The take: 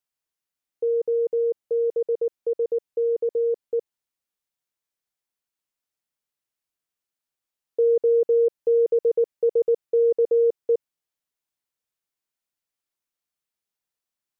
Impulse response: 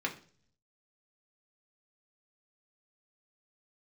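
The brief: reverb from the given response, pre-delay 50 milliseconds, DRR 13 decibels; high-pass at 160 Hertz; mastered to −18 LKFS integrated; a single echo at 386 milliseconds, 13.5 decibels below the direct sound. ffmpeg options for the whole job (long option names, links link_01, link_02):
-filter_complex "[0:a]highpass=160,aecho=1:1:386:0.211,asplit=2[link_01][link_02];[1:a]atrim=start_sample=2205,adelay=50[link_03];[link_02][link_03]afir=irnorm=-1:irlink=0,volume=-18.5dB[link_04];[link_01][link_04]amix=inputs=2:normalize=0,volume=4.5dB"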